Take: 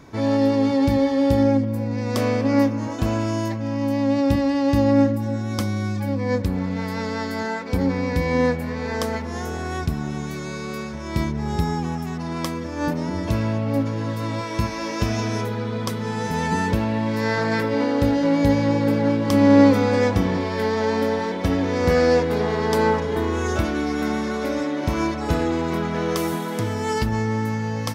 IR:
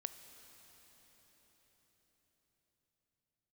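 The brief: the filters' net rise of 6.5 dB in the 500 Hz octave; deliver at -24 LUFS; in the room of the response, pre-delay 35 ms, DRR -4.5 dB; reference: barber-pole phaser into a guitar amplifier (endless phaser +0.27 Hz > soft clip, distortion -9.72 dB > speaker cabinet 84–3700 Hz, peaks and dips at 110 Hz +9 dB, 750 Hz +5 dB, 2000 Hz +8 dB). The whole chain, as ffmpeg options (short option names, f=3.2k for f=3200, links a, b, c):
-filter_complex "[0:a]equalizer=f=500:t=o:g=6.5,asplit=2[a][b];[1:a]atrim=start_sample=2205,adelay=35[c];[b][c]afir=irnorm=-1:irlink=0,volume=7.5dB[d];[a][d]amix=inputs=2:normalize=0,asplit=2[e][f];[f]afreqshift=0.27[g];[e][g]amix=inputs=2:normalize=1,asoftclip=threshold=-14dB,highpass=84,equalizer=f=110:t=q:w=4:g=9,equalizer=f=750:t=q:w=4:g=5,equalizer=f=2k:t=q:w=4:g=8,lowpass=f=3.7k:w=0.5412,lowpass=f=3.7k:w=1.3066,volume=-5.5dB"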